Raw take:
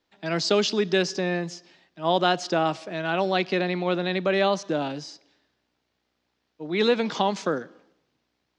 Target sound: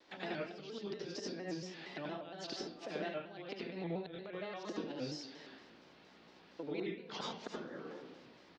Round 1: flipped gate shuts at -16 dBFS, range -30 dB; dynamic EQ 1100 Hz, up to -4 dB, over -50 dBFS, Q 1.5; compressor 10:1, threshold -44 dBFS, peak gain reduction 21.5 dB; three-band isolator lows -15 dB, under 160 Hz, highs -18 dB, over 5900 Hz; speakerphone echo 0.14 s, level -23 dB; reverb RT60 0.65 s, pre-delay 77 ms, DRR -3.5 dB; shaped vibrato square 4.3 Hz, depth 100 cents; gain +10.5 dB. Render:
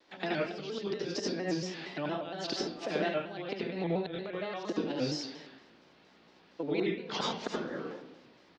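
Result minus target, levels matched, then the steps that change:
compressor: peak gain reduction -9 dB
change: compressor 10:1, threshold -54 dBFS, peak gain reduction 30.5 dB

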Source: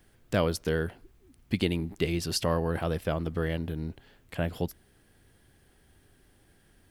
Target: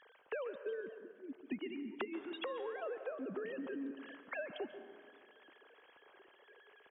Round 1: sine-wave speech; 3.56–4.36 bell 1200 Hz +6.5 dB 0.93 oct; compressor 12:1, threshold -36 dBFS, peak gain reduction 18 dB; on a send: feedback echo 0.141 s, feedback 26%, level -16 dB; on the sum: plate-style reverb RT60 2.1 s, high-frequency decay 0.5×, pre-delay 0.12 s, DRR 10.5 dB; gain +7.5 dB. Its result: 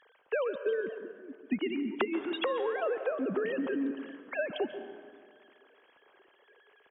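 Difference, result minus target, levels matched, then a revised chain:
compressor: peak gain reduction -10.5 dB
sine-wave speech; 3.56–4.36 bell 1200 Hz +6.5 dB 0.93 oct; compressor 12:1, threshold -47.5 dBFS, peak gain reduction 28.5 dB; on a send: feedback echo 0.141 s, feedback 26%, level -16 dB; on the sum: plate-style reverb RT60 2.1 s, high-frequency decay 0.5×, pre-delay 0.12 s, DRR 10.5 dB; gain +7.5 dB

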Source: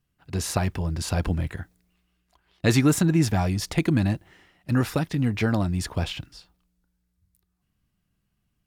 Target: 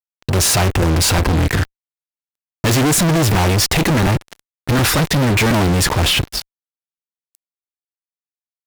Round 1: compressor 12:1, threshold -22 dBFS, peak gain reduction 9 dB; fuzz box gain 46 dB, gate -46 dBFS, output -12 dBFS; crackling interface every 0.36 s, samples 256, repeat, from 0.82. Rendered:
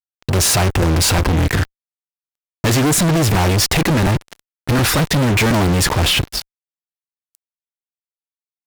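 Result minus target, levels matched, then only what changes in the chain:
compressor: peak gain reduction +9 dB
remove: compressor 12:1, threshold -22 dBFS, peak gain reduction 9 dB

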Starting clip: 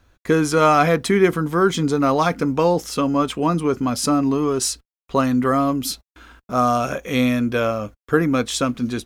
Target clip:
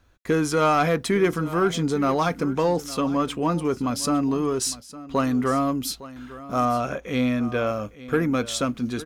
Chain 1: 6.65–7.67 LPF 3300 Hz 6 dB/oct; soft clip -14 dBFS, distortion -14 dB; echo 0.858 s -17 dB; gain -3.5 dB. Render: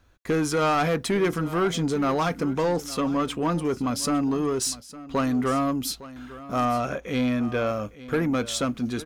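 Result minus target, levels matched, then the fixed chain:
soft clip: distortion +8 dB
6.65–7.67 LPF 3300 Hz 6 dB/oct; soft clip -7.5 dBFS, distortion -22 dB; echo 0.858 s -17 dB; gain -3.5 dB

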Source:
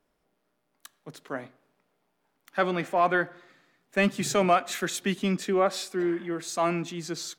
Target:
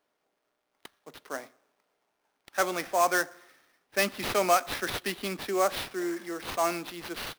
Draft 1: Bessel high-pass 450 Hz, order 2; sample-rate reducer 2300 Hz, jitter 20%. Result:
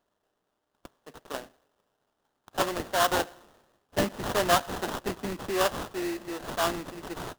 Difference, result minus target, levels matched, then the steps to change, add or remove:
sample-rate reducer: distortion +11 dB
change: sample-rate reducer 7400 Hz, jitter 20%

